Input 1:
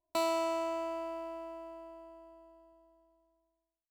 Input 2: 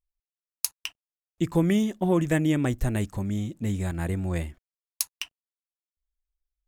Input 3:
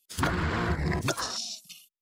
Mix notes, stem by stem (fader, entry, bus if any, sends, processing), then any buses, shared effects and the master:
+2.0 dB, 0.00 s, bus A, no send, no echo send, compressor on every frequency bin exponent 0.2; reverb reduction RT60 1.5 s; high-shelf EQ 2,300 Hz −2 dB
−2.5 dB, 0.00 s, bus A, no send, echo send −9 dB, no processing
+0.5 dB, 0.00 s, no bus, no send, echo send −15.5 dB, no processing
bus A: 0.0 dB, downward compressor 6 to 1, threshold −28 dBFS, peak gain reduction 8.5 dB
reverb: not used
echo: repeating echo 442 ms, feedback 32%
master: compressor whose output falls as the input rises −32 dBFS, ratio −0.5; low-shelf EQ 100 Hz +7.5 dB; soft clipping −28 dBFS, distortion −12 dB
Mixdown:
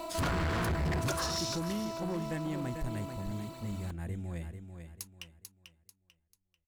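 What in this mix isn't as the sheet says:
stem 2 −2.5 dB → −12.0 dB
master: missing compressor whose output falls as the input rises −32 dBFS, ratio −0.5

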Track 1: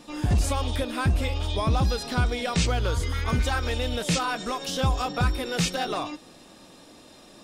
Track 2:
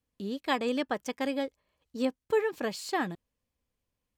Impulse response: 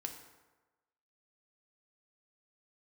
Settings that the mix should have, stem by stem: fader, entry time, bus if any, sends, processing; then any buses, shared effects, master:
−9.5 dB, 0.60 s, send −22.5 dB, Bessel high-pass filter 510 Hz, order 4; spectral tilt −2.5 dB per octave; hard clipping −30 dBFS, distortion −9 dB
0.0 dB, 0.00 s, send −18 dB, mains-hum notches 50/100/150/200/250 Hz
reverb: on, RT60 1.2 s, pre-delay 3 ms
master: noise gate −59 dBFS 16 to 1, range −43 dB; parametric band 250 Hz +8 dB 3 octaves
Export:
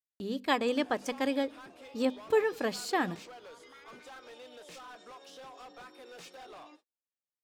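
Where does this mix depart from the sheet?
stem 1 −9.5 dB → −16.0 dB
master: missing parametric band 250 Hz +8 dB 3 octaves

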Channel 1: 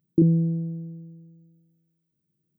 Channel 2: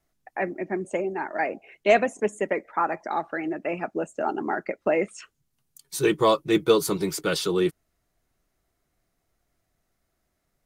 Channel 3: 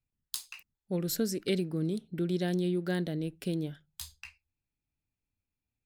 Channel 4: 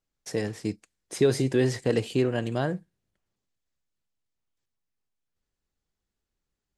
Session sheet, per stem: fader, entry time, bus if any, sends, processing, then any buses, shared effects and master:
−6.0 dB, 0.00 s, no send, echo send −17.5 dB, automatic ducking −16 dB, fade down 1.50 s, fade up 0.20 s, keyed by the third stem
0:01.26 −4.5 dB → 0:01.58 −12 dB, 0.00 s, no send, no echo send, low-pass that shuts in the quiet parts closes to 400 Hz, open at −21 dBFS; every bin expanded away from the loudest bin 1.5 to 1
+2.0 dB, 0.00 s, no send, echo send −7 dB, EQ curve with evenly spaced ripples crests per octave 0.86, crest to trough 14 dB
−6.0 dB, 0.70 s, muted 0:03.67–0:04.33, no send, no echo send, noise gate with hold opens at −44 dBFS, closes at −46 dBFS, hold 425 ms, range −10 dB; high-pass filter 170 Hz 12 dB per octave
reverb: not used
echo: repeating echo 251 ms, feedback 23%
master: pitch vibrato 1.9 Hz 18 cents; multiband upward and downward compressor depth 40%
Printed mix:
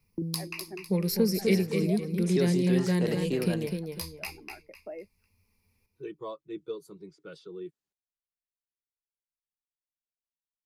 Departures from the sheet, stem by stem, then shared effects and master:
stem 1 −6.0 dB → −16.0 dB
stem 2 −4.5 dB → −15.5 dB
stem 4: entry 0.70 s → 1.15 s

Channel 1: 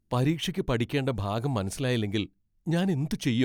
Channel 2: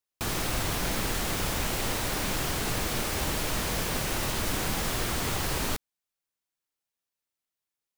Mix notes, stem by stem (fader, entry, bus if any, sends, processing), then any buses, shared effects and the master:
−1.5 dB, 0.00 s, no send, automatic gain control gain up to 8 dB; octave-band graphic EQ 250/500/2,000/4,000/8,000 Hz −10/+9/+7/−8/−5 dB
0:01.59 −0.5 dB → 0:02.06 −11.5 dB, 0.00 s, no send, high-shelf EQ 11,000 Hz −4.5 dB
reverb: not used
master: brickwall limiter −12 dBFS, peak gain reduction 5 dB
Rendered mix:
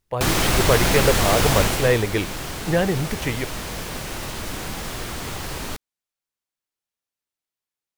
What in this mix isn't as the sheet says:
stem 2 −0.5 dB → +10.5 dB
master: missing brickwall limiter −12 dBFS, peak gain reduction 5 dB

